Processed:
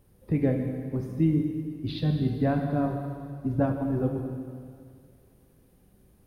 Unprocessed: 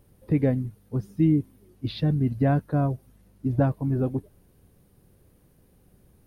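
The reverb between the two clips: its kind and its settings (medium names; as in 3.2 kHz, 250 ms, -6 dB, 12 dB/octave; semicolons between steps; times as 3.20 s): plate-style reverb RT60 2.2 s, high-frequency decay 1×, DRR 2.5 dB; trim -3 dB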